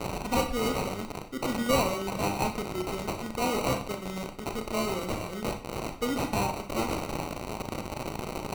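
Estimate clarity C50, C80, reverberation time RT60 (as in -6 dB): 9.0 dB, 13.0 dB, 0.50 s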